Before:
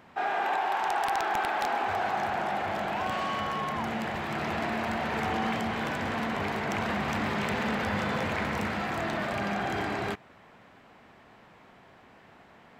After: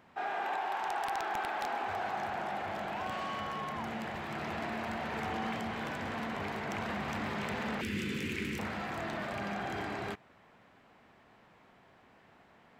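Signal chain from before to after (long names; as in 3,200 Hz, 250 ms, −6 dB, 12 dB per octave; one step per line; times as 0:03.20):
0:07.81–0:08.59: drawn EQ curve 120 Hz 0 dB, 390 Hz +7 dB, 660 Hz −27 dB, 2,600 Hz +7 dB, 4,000 Hz +1 dB, 8,300 Hz +8 dB
level −6.5 dB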